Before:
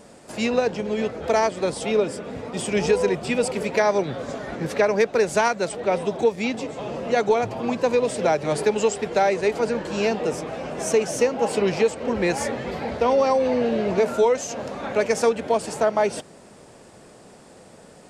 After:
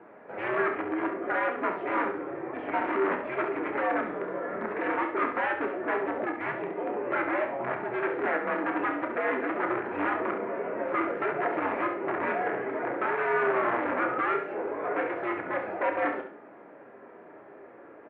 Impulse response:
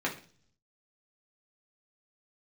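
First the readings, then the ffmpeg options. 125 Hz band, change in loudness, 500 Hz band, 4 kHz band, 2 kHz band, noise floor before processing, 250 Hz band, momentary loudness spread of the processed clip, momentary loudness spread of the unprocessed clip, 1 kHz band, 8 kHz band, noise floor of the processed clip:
−15.0 dB, −6.5 dB, −9.5 dB, below −15 dB, −0.5 dB, −48 dBFS, −6.0 dB, 6 LU, 9 LU, −3.0 dB, below −40 dB, −50 dBFS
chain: -filter_complex "[0:a]alimiter=limit=-14dB:level=0:latency=1:release=17,asoftclip=type=tanh:threshold=-23.5dB,flanger=delay=0.7:depth=6.5:regen=-63:speed=0.13:shape=triangular,aeval=exprs='(mod(22.4*val(0)+1,2)-1)/22.4':channel_layout=same,asplit=2[link_01][link_02];[link_02]adelay=30,volume=-8.5dB[link_03];[link_01][link_03]amix=inputs=2:normalize=0,aecho=1:1:68|136|204|272:0.398|0.119|0.0358|0.0107,asplit=2[link_04][link_05];[1:a]atrim=start_sample=2205[link_06];[link_05][link_06]afir=irnorm=-1:irlink=0,volume=-12dB[link_07];[link_04][link_07]amix=inputs=2:normalize=0,highpass=frequency=420:width_type=q:width=0.5412,highpass=frequency=420:width_type=q:width=1.307,lowpass=frequency=2200:width_type=q:width=0.5176,lowpass=frequency=2200:width_type=q:width=0.7071,lowpass=frequency=2200:width_type=q:width=1.932,afreqshift=-110,volume=2dB"

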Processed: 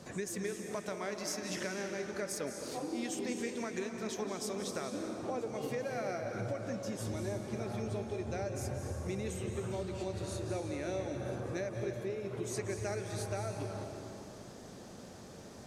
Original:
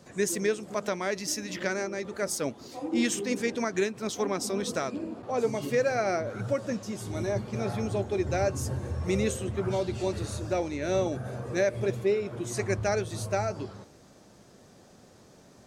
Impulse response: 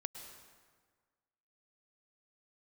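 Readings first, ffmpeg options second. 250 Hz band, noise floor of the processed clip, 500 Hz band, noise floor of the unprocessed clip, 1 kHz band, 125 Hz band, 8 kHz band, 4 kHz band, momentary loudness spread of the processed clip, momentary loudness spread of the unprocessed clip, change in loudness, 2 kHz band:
−7.5 dB, −50 dBFS, −9.0 dB, −55 dBFS, −8.5 dB, −6.5 dB, −7.0 dB, −7.0 dB, 6 LU, 6 LU, −8.5 dB, −9.0 dB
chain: -filter_complex "[0:a]acompressor=threshold=-40dB:ratio=6[link_01];[1:a]atrim=start_sample=2205,asetrate=26901,aresample=44100[link_02];[link_01][link_02]afir=irnorm=-1:irlink=0,volume=3.5dB"

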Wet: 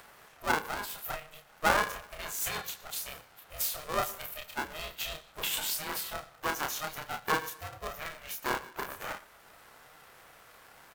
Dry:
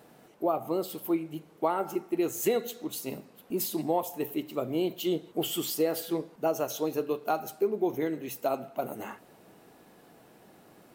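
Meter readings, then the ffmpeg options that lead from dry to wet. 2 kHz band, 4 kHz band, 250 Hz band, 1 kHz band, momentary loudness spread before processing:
+11.5 dB, +3.0 dB, −14.5 dB, +0.5 dB, 8 LU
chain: -filter_complex "[0:a]lowshelf=frequency=720:width_type=q:width=3:gain=-14,asplit=2[link_01][link_02];[link_02]adelay=30,volume=-4dB[link_03];[link_01][link_03]amix=inputs=2:normalize=0,asplit=2[link_04][link_05];[link_05]aecho=0:1:120:0.0891[link_06];[link_04][link_06]amix=inputs=2:normalize=0,acompressor=mode=upward:threshold=-50dB:ratio=2.5,aeval=exprs='val(0)*sgn(sin(2*PI*310*n/s))':channel_layout=same"

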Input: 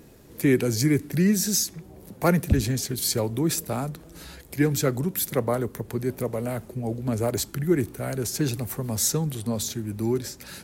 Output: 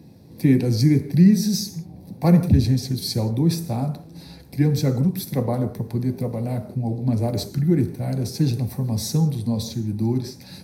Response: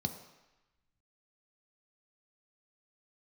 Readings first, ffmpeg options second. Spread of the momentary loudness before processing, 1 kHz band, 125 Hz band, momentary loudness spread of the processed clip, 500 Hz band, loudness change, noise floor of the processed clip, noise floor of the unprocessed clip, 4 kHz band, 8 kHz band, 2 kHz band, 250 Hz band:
9 LU, −1.0 dB, +7.5 dB, 11 LU, −1.5 dB, +4.0 dB, −44 dBFS, −48 dBFS, +0.5 dB, −7.0 dB, −6.0 dB, +5.5 dB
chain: -filter_complex "[1:a]atrim=start_sample=2205,afade=type=out:start_time=0.24:duration=0.01,atrim=end_sample=11025[link_01];[0:a][link_01]afir=irnorm=-1:irlink=0,volume=-5.5dB"

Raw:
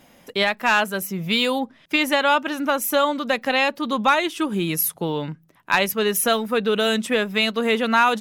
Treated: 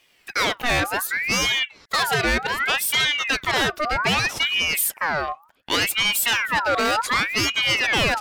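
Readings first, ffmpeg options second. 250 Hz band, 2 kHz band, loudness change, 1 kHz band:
−8.0 dB, +2.5 dB, +0.5 dB, −2.5 dB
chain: -af "asoftclip=type=tanh:threshold=-20.5dB,agate=range=-11dB:threshold=-50dB:ratio=16:detection=peak,aeval=exprs='val(0)*sin(2*PI*1800*n/s+1800*0.5/0.66*sin(2*PI*0.66*n/s))':channel_layout=same,volume=6.5dB"

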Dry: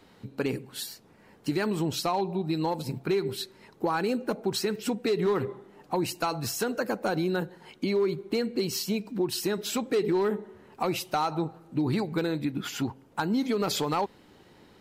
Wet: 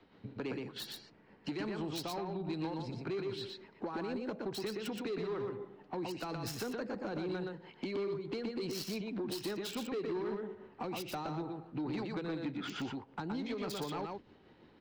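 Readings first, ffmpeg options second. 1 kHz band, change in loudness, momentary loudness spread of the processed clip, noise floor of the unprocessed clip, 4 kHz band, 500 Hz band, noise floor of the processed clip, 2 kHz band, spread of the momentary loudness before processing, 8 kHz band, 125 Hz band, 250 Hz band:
−12.0 dB, −10.0 dB, 6 LU, −57 dBFS, −9.0 dB, −10.0 dB, −62 dBFS, −9.5 dB, 8 LU, −13.5 dB, −10.0 dB, −9.0 dB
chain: -filter_complex "[0:a]tremolo=f=6:d=0.41,agate=range=-8dB:threshold=-47dB:ratio=16:detection=peak,acrossover=split=220|1200|4600[link_01][link_02][link_03][link_04];[link_04]acrusher=bits=4:mix=0:aa=0.5[link_05];[link_01][link_02][link_03][link_05]amix=inputs=4:normalize=0,acrossover=split=420|5800[link_06][link_07][link_08];[link_06]acompressor=threshold=-43dB:ratio=4[link_09];[link_07]acompressor=threshold=-44dB:ratio=4[link_10];[link_08]acompressor=threshold=-47dB:ratio=4[link_11];[link_09][link_10][link_11]amix=inputs=3:normalize=0,equalizer=frequency=300:width_type=o:width=0.77:gain=2,aecho=1:1:120:0.631,asoftclip=type=tanh:threshold=-33dB,volume=2dB"

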